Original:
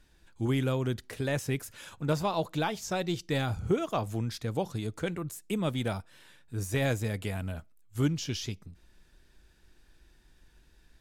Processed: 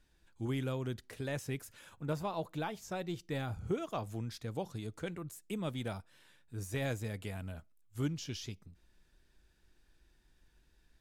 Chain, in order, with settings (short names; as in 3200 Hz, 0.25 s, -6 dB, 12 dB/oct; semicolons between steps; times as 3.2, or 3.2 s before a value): 1.79–3.61 bell 5000 Hz -5 dB 1.6 oct; gain -7.5 dB